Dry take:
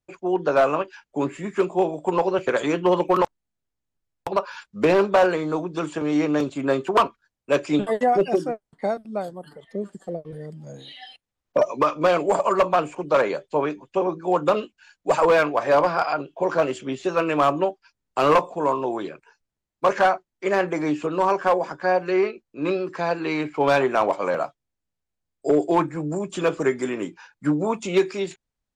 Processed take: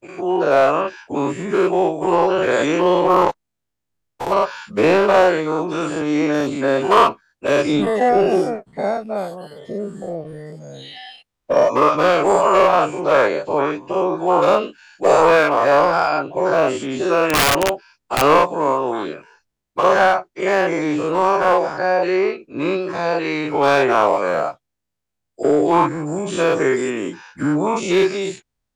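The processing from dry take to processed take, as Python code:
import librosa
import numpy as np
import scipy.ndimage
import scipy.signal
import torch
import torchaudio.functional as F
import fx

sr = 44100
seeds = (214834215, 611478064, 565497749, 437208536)

y = fx.spec_dilate(x, sr, span_ms=120)
y = fx.overflow_wrap(y, sr, gain_db=9.0, at=(17.26, 18.22))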